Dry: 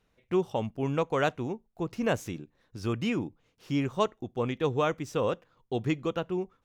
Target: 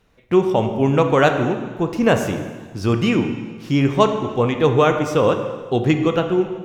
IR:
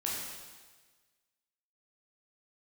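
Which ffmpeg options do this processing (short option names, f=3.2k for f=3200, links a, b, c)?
-filter_complex "[0:a]asplit=2[a][b];[1:a]atrim=start_sample=2205,highshelf=f=3.9k:g=-7.5[c];[b][c]afir=irnorm=-1:irlink=0,volume=-4.5dB[d];[a][d]amix=inputs=2:normalize=0,volume=8dB"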